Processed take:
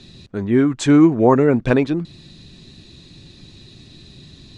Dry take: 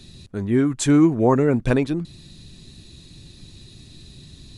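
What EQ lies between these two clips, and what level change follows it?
high-frequency loss of the air 96 metres
low-shelf EQ 110 Hz −9.5 dB
+5.0 dB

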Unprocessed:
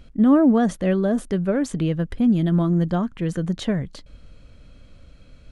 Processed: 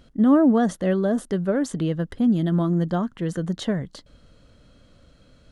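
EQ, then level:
low-shelf EQ 87 Hz −11.5 dB
parametric band 2,400 Hz −10.5 dB 0.23 octaves
0.0 dB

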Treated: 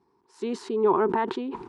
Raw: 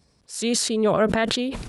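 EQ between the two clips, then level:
pair of resonant band-passes 590 Hz, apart 1.3 octaves
+9.0 dB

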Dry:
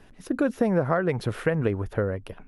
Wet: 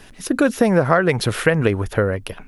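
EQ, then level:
high-shelf EQ 2,000 Hz +11.5 dB
+6.5 dB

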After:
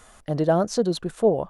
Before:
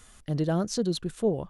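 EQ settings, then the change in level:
drawn EQ curve 120 Hz 0 dB, 390 Hz +5 dB, 640 Hz +12 dB, 3,100 Hz +1 dB
0.0 dB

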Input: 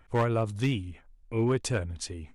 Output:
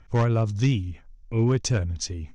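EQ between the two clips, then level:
low-pass with resonance 5,900 Hz, resonance Q 4.6
bass and treble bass +8 dB, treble −3 dB
0.0 dB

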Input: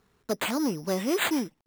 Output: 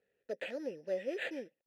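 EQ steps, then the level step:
formant filter e
low-shelf EQ 120 Hz +8.5 dB
0.0 dB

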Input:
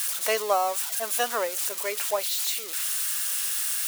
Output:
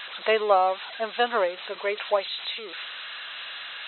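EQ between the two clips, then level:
linear-phase brick-wall low-pass 4,100 Hz
low-shelf EQ 420 Hz +4.5 dB
+2.5 dB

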